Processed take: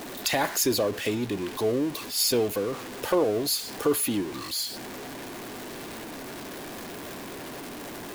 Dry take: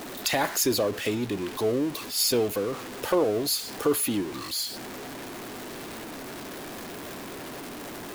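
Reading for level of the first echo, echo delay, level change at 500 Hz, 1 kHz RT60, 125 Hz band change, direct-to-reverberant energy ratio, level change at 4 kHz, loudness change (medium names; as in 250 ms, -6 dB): no echo, no echo, 0.0 dB, no reverb, 0.0 dB, no reverb, 0.0 dB, 0.0 dB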